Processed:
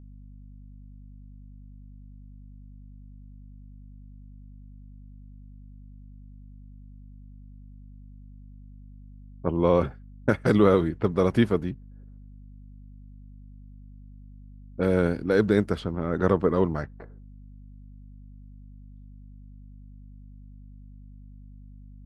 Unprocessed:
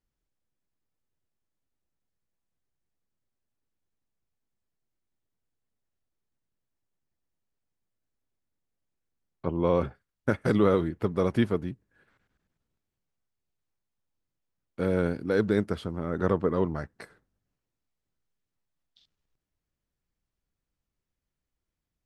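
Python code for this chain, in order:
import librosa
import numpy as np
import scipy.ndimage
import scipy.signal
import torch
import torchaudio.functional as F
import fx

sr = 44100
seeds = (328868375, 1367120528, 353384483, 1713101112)

y = fx.env_lowpass(x, sr, base_hz=350.0, full_db=-24.0)
y = fx.add_hum(y, sr, base_hz=50, snr_db=16)
y = y * librosa.db_to_amplitude(3.5)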